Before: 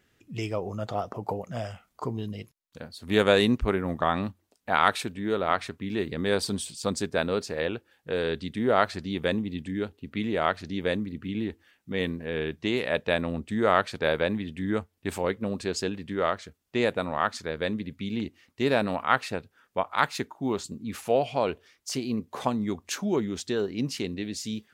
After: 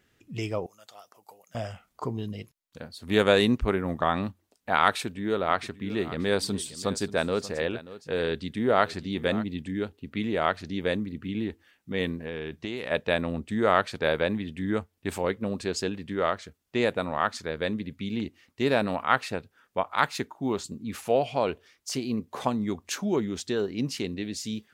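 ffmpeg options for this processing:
-filter_complex "[0:a]asettb=1/sr,asplit=3[s0][s1][s2];[s0]atrim=end=0.664[s3];[s1]atrim=start=0.66:end=1.55,asetpts=PTS-STARTPTS,afade=t=in:d=0.004:c=qsin,afade=t=out:st=0.886:d=0.004:c=qsin,aderivative[s4];[s2]atrim=start=1.546[s5];[s3][s4]acrossfade=d=0.004:c1=hsin:c2=qsin[s6];[s6][s5]acrossfade=d=0.004:c1=qsin:c2=hsin,asettb=1/sr,asplit=3[s7][s8][s9];[s7]atrim=end=5.044[s10];[s8]atrim=start=5.04:end=9.44,asetpts=PTS-STARTPTS,afade=t=in:d=0.004:c=qsin,afade=t=out:st=4.396:d=0.004:c=qsin,aecho=1:1:584:0.158,atrim=end_sample=194040[s11];[s9]atrim=start=9.436[s12];[s10][s11]acrossfade=d=0.004:c1=hsin:c2=qsin[s13];[s13][s12]acrossfade=d=0.004:c1=qsin:c2=hsin,asettb=1/sr,asplit=3[s14][s15][s16];[s14]atrim=end=12.184[s17];[s15]atrim=start=12.18:end=12.91,asetpts=PTS-STARTPTS,afade=t=in:d=0.004:c=qsin,afade=t=out:st=0.726:d=0.004:c=qsin,acompressor=threshold=0.0355:ratio=6:attack=3.2:release=140:knee=1:detection=peak[s18];[s16]atrim=start=12.906[s19];[s17][s18]acrossfade=d=0.004:c1=hsin:c2=qsin[s20];[s20][s19]acrossfade=d=0.004:c1=qsin:c2=hsin"

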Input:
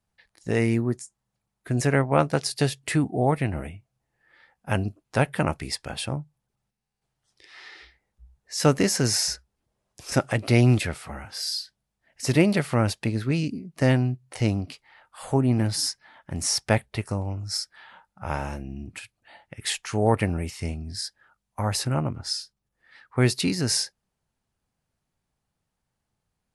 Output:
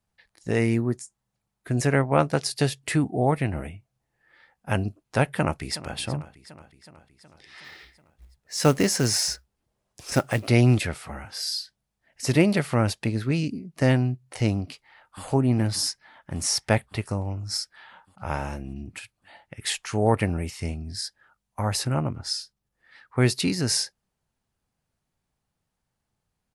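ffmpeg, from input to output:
-filter_complex "[0:a]asplit=2[s0][s1];[s1]afade=t=in:st=5.29:d=0.01,afade=t=out:st=5.97:d=0.01,aecho=0:1:370|740|1110|1480|1850|2220|2590:0.158489|0.103018|0.0669617|0.0435251|0.0282913|0.0183894|0.0119531[s2];[s0][s2]amix=inputs=2:normalize=0,asettb=1/sr,asplit=3[s3][s4][s5];[s3]atrim=end=7.644[s6];[s4]atrim=start=7.64:end=10.48,asetpts=PTS-STARTPTS,afade=t=in:d=0.004:c=qsin,afade=t=out:st=2.836:d=0.004:c=qsin,acrusher=bits=5:mode=log:mix=0:aa=0.000001[s7];[s5]atrim=start=10.476[s8];[s6][s7]acrossfade=d=0.004:c1=hsin:c2=qsin[s9];[s9][s8]acrossfade=d=0.004:c1=qsin:c2=hsin,asplit=2[s10][s11];[s11]afade=t=in:st=14.59:d=0.01,afade=t=out:st=15.25:d=0.01,aecho=0:1:580|1160|1740|2320|2900|3480|4060|4640:0.281838|0.183195|0.119077|0.0773998|0.0503099|0.0327014|0.0212559|0.0138164[s12];[s10][s12]amix=inputs=2:normalize=0"

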